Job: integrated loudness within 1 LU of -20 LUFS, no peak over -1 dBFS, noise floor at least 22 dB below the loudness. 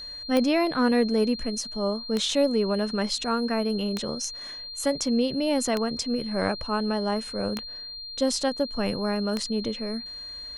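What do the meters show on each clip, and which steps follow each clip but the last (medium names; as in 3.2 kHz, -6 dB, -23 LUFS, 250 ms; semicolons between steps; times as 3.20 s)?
clicks found 6; steady tone 4.2 kHz; tone level -36 dBFS; loudness -26.5 LUFS; peak level -10.5 dBFS; loudness target -20.0 LUFS
-> de-click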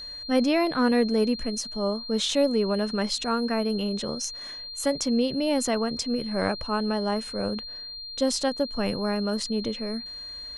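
clicks found 0; steady tone 4.2 kHz; tone level -36 dBFS
-> band-stop 4.2 kHz, Q 30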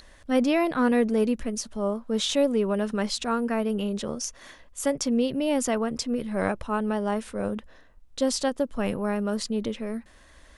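steady tone not found; loudness -27.0 LUFS; peak level -11.0 dBFS; loudness target -20.0 LUFS
-> trim +7 dB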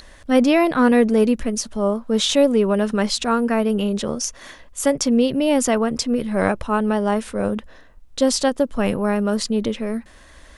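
loudness -20.0 LUFS; peak level -4.0 dBFS; noise floor -46 dBFS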